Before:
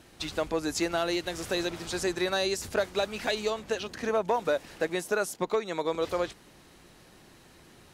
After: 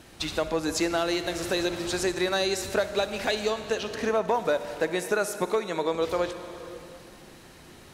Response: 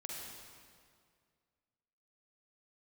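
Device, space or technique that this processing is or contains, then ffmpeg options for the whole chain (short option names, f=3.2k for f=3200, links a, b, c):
ducked reverb: -filter_complex "[0:a]asplit=3[a][b][c];[1:a]atrim=start_sample=2205[d];[b][d]afir=irnorm=-1:irlink=0[e];[c]apad=whole_len=350047[f];[e][f]sidechaincompress=threshold=-30dB:ratio=8:attack=16:release=790,volume=2dB[g];[a][g]amix=inputs=2:normalize=0"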